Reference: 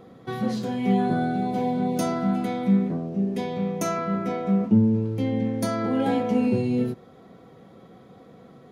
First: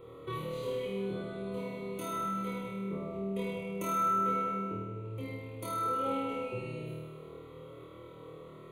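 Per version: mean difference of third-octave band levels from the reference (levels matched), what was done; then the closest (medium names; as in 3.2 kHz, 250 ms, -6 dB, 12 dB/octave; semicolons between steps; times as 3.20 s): 7.0 dB: compression, threshold -30 dBFS, peak gain reduction 15.5 dB; static phaser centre 1.1 kHz, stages 8; flutter echo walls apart 4.4 m, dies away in 1.4 s; trim -2 dB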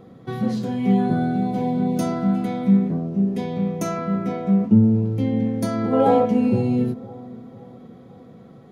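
3.0 dB: peaking EQ 140 Hz +2.5 dB 1.6 oct; time-frequency box 5.93–6.25 s, 380–1400 Hz +10 dB; bass shelf 360 Hz +5 dB; bucket-brigade echo 512 ms, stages 4096, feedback 47%, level -19.5 dB; trim -1.5 dB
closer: second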